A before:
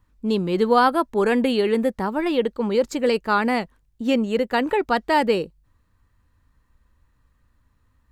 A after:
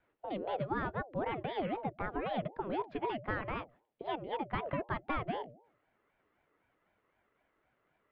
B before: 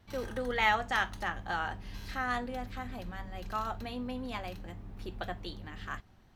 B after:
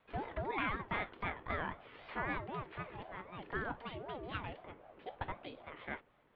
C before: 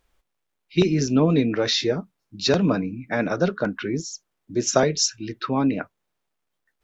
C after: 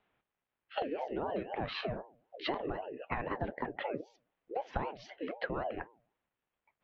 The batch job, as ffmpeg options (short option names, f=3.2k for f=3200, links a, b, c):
-af "highpass=f=180:t=q:w=0.5412,highpass=f=180:t=q:w=1.307,lowpass=f=3.1k:t=q:w=0.5176,lowpass=f=3.1k:t=q:w=0.7071,lowpass=f=3.1k:t=q:w=1.932,afreqshift=-230,acompressor=threshold=-31dB:ratio=6,highpass=f=40:p=1,bandreject=f=114.4:t=h:w=4,bandreject=f=228.8:t=h:w=4,bandreject=f=343.2:t=h:w=4,aeval=exprs='val(0)*sin(2*PI*530*n/s+530*0.35/3.9*sin(2*PI*3.9*n/s))':c=same,volume=1dB"